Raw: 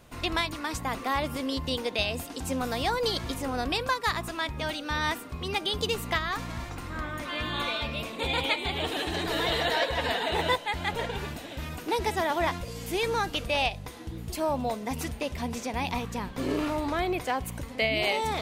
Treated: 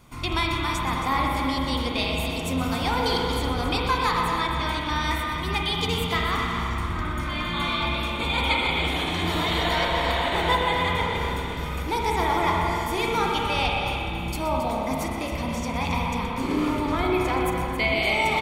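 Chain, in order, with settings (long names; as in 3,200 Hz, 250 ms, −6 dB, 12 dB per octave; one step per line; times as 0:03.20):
comb filter 0.9 ms, depth 47%
loudspeakers that aren't time-aligned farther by 42 metres −12 dB, 93 metres −10 dB
spring reverb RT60 3.1 s, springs 30/46/57 ms, chirp 50 ms, DRR −1.5 dB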